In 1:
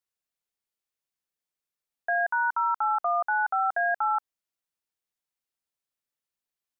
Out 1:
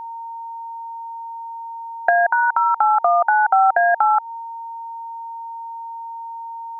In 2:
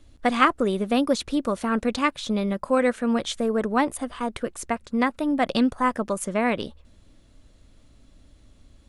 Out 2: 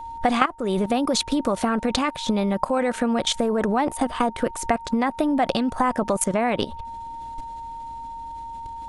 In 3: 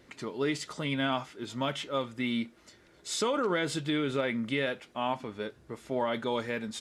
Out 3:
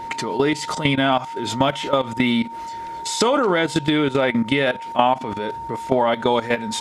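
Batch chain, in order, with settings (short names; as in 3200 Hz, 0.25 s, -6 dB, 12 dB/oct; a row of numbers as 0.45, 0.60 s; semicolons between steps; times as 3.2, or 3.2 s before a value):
level quantiser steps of 16 dB; whine 920 Hz -51 dBFS; compressor 8:1, threshold -37 dBFS; dynamic EQ 770 Hz, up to +7 dB, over -58 dBFS, Q 3.4; normalise peaks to -2 dBFS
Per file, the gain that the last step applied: +21.5, +18.0, +21.5 dB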